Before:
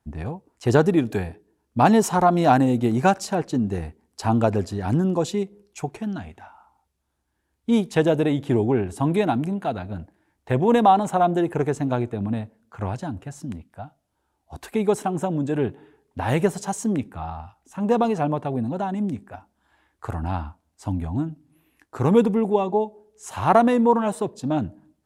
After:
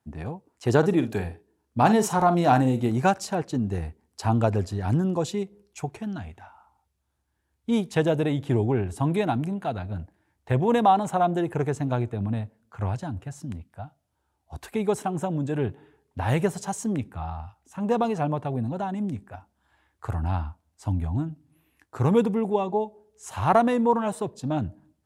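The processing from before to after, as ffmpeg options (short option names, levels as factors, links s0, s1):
-filter_complex "[0:a]asettb=1/sr,asplit=3[s0][s1][s2];[s0]atrim=end=0.784[s3];[s1]atrim=start=0.78:end=2.9,asetpts=PTS-STARTPTS,afade=t=in:d=0.004:c=qsin,afade=t=out:st=2.116:d=0.004:c=qsin,asplit=2[s4][s5];[s5]adelay=46,volume=0.282[s6];[s4][s6]amix=inputs=2:normalize=0,atrim=end_sample=93492[s7];[s2]atrim=start=2.896[s8];[s3][s7]acrossfade=d=0.004:c1=hsin:c2=qsin[s9];[s9][s8]acrossfade=d=0.004:c1=qsin:c2=hsin,highpass=82,asubboost=boost=3:cutoff=120,volume=0.75"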